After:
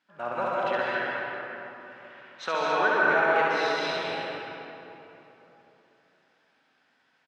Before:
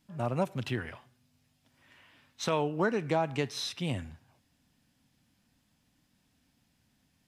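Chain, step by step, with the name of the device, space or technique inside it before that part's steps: station announcement (BPF 500–3600 Hz; bell 1500 Hz +9 dB 0.53 oct; loudspeakers at several distances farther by 23 m -3 dB, 91 m -10 dB; reverb RT60 3.4 s, pre-delay 0.118 s, DRR -5 dB)

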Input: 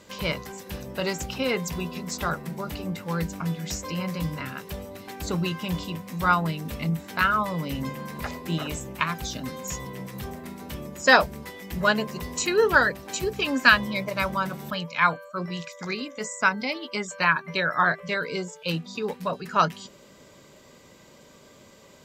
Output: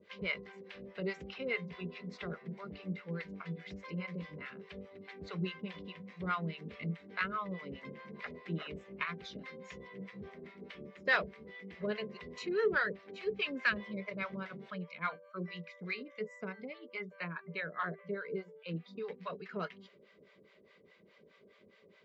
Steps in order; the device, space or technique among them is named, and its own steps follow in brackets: 16.6–18.75 high shelf 2000 Hz -10.5 dB; guitar amplifier with harmonic tremolo (harmonic tremolo 4.8 Hz, depth 100%, crossover 610 Hz; soft clip -14.5 dBFS, distortion -14 dB; speaker cabinet 110–4000 Hz, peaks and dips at 130 Hz -9 dB, 190 Hz +6 dB, 270 Hz -6 dB, 420 Hz +10 dB, 870 Hz -8 dB, 2100 Hz +8 dB); gain -8.5 dB

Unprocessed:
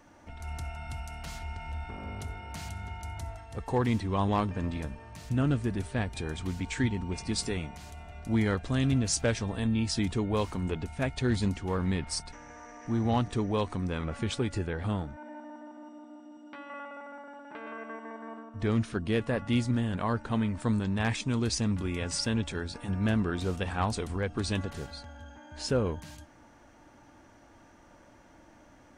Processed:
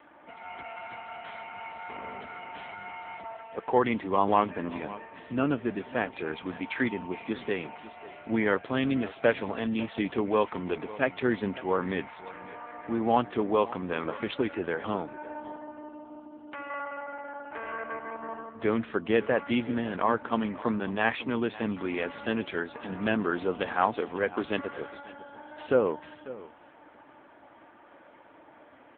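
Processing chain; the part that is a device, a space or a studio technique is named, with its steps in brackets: satellite phone (BPF 350–3300 Hz; echo 0.546 s -17 dB; gain +7.5 dB; AMR-NB 6.7 kbps 8000 Hz)

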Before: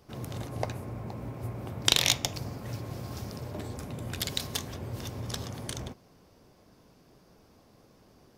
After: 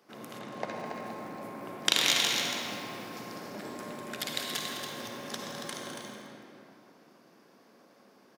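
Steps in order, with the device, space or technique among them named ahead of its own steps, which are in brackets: stadium PA (HPF 200 Hz 24 dB/oct; bell 1700 Hz +6 dB 1.3 oct; loudspeakers at several distances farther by 71 m -10 dB, 96 m -7 dB; reverb RT60 3.0 s, pre-delay 49 ms, DRR 0.5 dB); 0.39–1.06 air absorption 68 m; lo-fi delay 0.163 s, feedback 55%, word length 6-bit, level -13.5 dB; gain -4.5 dB

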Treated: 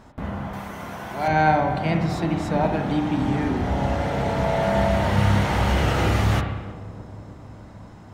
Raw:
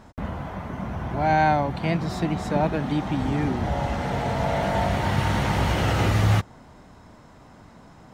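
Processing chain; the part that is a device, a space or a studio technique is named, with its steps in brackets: 0.53–1.28 RIAA curve recording; dub delay into a spring reverb (darkening echo 0.311 s, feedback 76%, low-pass 960 Hz, level -15.5 dB; spring tank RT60 1 s, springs 30/45/50 ms, chirp 50 ms, DRR 4 dB)

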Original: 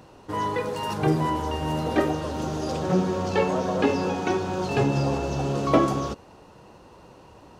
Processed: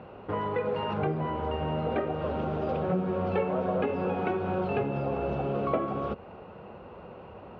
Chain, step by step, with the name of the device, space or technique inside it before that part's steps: bass amplifier (compressor 4:1, threshold -31 dBFS, peak gain reduction 14.5 dB; speaker cabinet 67–2400 Hz, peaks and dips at 71 Hz -4 dB, 130 Hz -9 dB, 300 Hz -10 dB, 960 Hz -7 dB, 1800 Hz -8 dB); gain +7 dB

